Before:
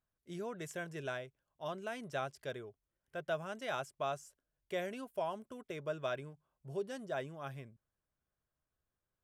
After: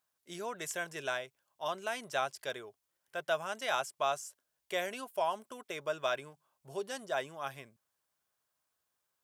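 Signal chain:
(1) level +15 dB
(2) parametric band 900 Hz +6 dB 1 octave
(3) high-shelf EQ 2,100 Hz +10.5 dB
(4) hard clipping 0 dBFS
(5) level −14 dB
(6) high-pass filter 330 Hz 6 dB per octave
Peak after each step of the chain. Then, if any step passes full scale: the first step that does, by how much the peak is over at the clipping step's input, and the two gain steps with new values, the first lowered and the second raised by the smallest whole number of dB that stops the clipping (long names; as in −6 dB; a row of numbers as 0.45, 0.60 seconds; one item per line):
−9.5, −7.0, −4.0, −4.0, −18.0, −18.0 dBFS
no step passes full scale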